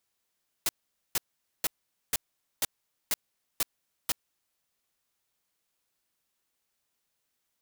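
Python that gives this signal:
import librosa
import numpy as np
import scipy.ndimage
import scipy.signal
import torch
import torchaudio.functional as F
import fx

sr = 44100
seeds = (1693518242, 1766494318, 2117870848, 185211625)

y = fx.noise_burst(sr, seeds[0], colour='white', on_s=0.03, off_s=0.46, bursts=8, level_db=-26.5)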